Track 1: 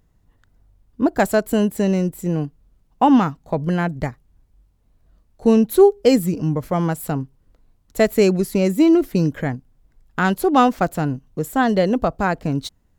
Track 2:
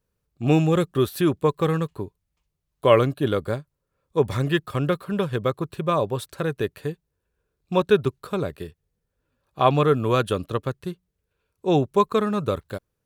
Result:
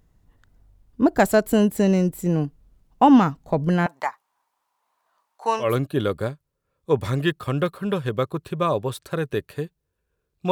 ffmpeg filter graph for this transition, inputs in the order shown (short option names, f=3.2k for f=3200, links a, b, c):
-filter_complex "[0:a]asettb=1/sr,asplit=3[a][b][c];[a]atrim=end=3.864[d];[b]atrim=start=3.86:end=5.78,asetpts=PTS-STARTPTS,afade=t=in:d=0.004:c=qsin,afade=t=out:st=1.916:d=0.004:c=qsin,highpass=f=960:t=q:w=4.3[e];[c]atrim=start=5.776[f];[d][e]acrossfade=d=0.004:c1=hsin:c2=qsin[g];[g][f]acrossfade=d=0.004:c1=qsin:c2=hsin,apad=whole_dur=10.51,atrim=end=10.51,atrim=end=5.78,asetpts=PTS-STARTPTS[h];[1:a]atrim=start=2.85:end=7.78,asetpts=PTS-STARTPTS[i];[h][i]acrossfade=d=0.2:c1=tri:c2=tri"